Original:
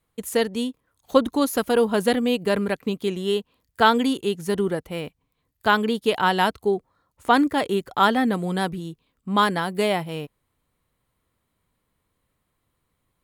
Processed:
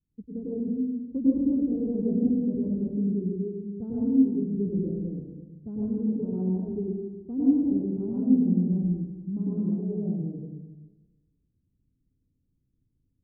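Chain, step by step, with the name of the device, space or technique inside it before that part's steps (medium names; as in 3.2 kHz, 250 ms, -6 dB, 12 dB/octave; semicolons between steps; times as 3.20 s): next room (low-pass 280 Hz 24 dB/octave; reverberation RT60 1.2 s, pre-delay 94 ms, DRR -8 dB); trim -6 dB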